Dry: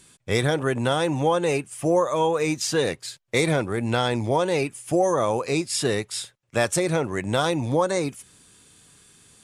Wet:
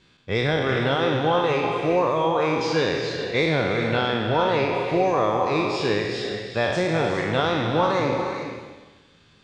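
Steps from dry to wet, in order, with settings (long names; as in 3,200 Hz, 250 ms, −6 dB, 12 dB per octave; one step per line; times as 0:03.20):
peak hold with a decay on every bin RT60 1.27 s
low-pass filter 4,400 Hz 24 dB per octave
reverb whose tail is shaped and stops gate 450 ms rising, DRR 4.5 dB
level −2.5 dB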